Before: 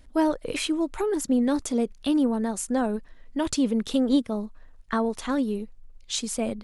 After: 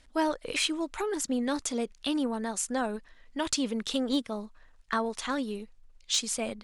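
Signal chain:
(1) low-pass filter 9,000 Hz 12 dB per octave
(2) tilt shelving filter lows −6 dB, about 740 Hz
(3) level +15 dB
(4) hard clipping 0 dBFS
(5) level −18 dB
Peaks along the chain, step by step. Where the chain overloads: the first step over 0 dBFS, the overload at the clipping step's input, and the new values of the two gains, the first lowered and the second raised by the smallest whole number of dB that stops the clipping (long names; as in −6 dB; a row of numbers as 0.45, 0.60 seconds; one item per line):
−11.5, −10.5, +4.5, 0.0, −18.0 dBFS
step 3, 4.5 dB
step 3 +10 dB, step 5 −13 dB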